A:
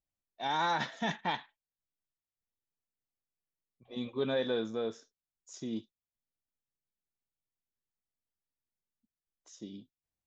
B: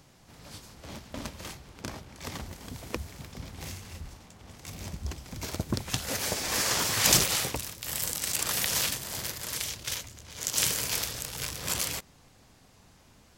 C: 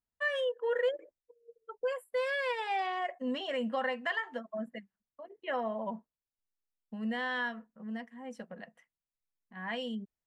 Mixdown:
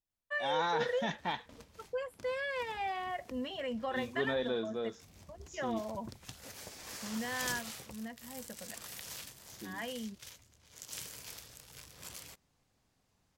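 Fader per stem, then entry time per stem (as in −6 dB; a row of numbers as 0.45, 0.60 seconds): −2.5, −17.5, −4.0 decibels; 0.00, 0.35, 0.10 seconds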